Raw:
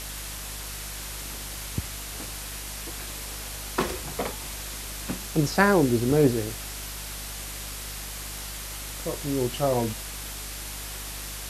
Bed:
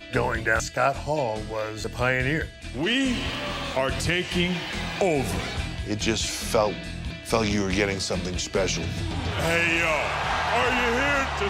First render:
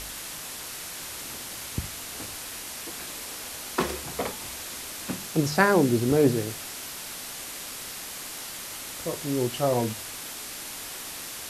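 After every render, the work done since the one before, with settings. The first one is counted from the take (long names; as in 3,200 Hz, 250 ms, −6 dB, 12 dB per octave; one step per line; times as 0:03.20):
hum removal 50 Hz, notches 4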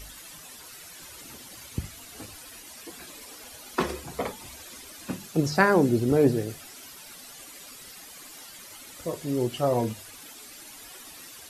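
broadband denoise 12 dB, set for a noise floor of −38 dBFS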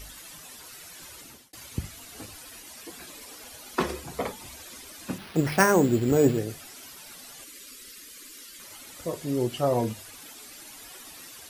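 0:01.05–0:01.53: fade out equal-power
0:05.18–0:06.39: bad sample-rate conversion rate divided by 6×, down none, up hold
0:07.44–0:08.60: phaser with its sweep stopped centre 320 Hz, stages 4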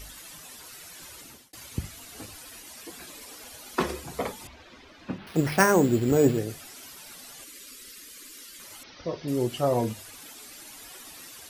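0:04.47–0:05.27: high-frequency loss of the air 240 metres
0:08.83–0:09.28: Butterworth low-pass 5,900 Hz 96 dB per octave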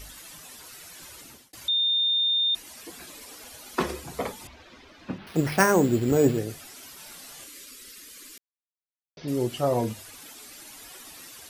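0:01.68–0:02.55: beep over 3,630 Hz −20.5 dBFS
0:06.96–0:07.65: double-tracking delay 30 ms −6 dB
0:08.38–0:09.17: silence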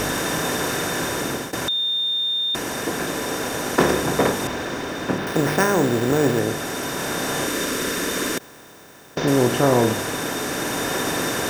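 compressor on every frequency bin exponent 0.4
speech leveller 2 s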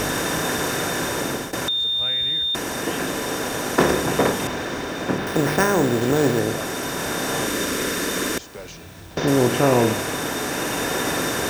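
mix in bed −13.5 dB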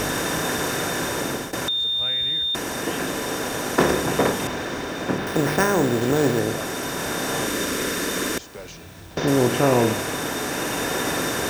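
level −1 dB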